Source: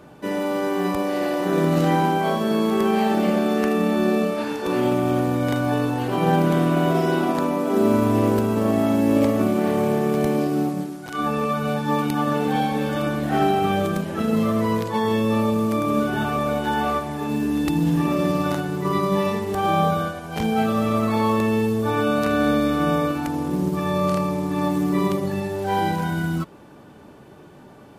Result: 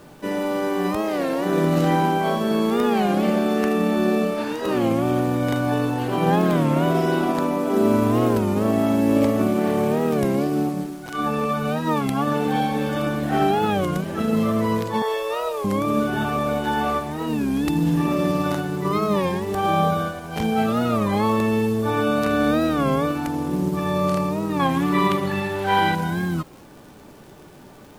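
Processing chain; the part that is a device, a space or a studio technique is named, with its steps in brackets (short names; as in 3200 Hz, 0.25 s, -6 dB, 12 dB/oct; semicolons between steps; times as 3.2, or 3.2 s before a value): 15.02–15.66 steep high-pass 400 Hz 48 dB/oct; 24.61–25.95 band shelf 1900 Hz +8.5 dB 2.3 oct; warped LP (record warp 33 1/3 rpm, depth 160 cents; crackle; pink noise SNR 33 dB)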